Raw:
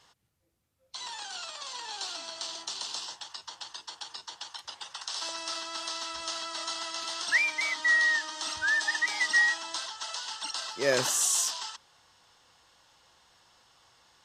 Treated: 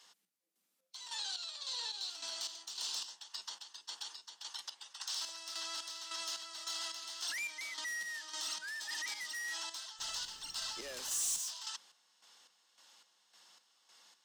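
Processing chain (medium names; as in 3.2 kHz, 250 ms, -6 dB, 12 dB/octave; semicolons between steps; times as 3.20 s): saturation -28.5 dBFS, distortion -8 dB; 1.16–2.10 s: graphic EQ with 31 bands 500 Hz +8 dB, 4 kHz +11 dB, 12.5 kHz -7 dB; square tremolo 1.8 Hz, depth 65%, duty 45%; steep high-pass 170 Hz 96 dB/octave; peak limiter -31.5 dBFS, peak gain reduction 9 dB; treble shelf 2.1 kHz +11 dB; 9.98–11.38 s: added noise pink -56 dBFS; trim -7.5 dB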